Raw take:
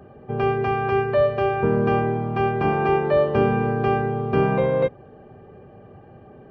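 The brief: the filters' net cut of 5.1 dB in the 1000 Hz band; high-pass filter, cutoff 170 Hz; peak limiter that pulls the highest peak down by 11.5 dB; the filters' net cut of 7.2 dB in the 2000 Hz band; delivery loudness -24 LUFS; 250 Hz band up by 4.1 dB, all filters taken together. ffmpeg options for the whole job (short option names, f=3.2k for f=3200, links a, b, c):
-af "highpass=170,equalizer=f=250:t=o:g=7.5,equalizer=f=1k:t=o:g=-6.5,equalizer=f=2k:t=o:g=-7.5,volume=1dB,alimiter=limit=-16dB:level=0:latency=1"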